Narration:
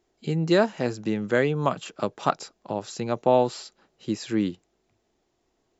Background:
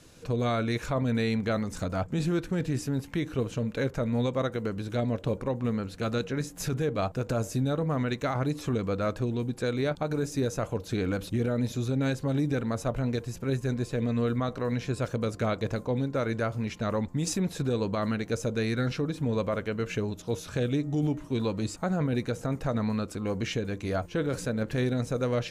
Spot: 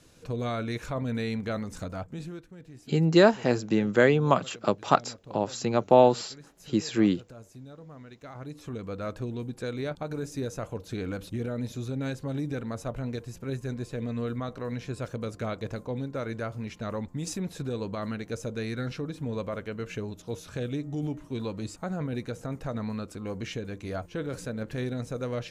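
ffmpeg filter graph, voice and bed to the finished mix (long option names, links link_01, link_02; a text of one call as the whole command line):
ffmpeg -i stem1.wav -i stem2.wav -filter_complex "[0:a]adelay=2650,volume=2dB[link_01];[1:a]volume=10.5dB,afade=type=out:start_time=1.76:duration=0.72:silence=0.177828,afade=type=in:start_time=8.16:duration=1.03:silence=0.199526[link_02];[link_01][link_02]amix=inputs=2:normalize=0" out.wav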